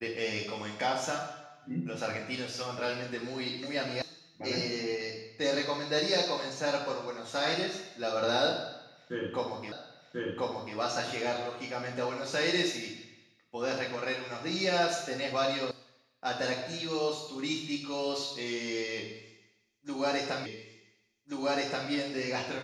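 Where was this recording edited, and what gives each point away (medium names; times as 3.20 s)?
4.02 s: sound stops dead
9.72 s: repeat of the last 1.04 s
15.71 s: sound stops dead
20.46 s: repeat of the last 1.43 s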